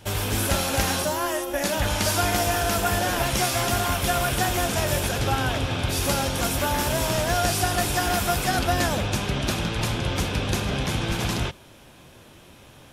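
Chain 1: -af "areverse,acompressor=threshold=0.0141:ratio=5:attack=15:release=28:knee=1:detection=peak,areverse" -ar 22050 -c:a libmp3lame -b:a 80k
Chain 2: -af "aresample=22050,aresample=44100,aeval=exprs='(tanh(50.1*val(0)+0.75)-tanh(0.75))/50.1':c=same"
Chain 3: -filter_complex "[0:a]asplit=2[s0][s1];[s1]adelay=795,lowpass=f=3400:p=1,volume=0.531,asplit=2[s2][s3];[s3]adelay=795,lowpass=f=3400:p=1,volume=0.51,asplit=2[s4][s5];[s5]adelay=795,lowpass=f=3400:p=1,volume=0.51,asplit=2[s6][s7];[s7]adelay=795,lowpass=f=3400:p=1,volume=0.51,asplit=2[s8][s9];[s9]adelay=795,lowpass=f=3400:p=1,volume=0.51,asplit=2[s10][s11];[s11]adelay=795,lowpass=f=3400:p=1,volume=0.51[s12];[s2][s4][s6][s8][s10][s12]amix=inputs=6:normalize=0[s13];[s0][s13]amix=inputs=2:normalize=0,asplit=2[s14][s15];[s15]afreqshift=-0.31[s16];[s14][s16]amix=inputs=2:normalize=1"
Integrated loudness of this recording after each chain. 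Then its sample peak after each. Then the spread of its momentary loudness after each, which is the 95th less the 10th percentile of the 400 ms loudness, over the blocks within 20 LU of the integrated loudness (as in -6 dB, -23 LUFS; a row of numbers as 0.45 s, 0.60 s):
-35.0 LUFS, -35.0 LUFS, -26.0 LUFS; -21.5 dBFS, -29.5 dBFS, -11.5 dBFS; 3 LU, 3 LU, 5 LU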